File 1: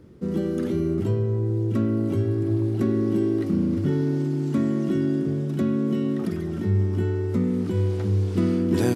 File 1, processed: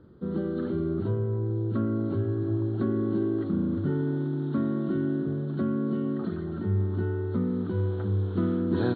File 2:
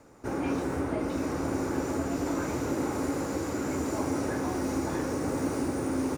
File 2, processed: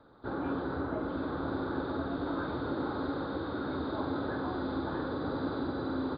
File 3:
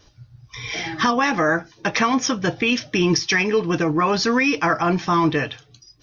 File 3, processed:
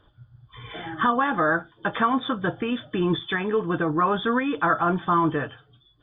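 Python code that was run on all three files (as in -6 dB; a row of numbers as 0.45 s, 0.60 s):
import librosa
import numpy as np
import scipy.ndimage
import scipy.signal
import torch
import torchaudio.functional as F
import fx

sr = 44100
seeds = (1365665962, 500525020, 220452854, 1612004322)

y = fx.freq_compress(x, sr, knee_hz=3000.0, ratio=4.0)
y = fx.high_shelf_res(y, sr, hz=1800.0, db=-6.5, q=3.0)
y = y * librosa.db_to_amplitude(-4.5)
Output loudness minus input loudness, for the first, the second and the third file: -4.5 LU, -4.0 LU, -4.0 LU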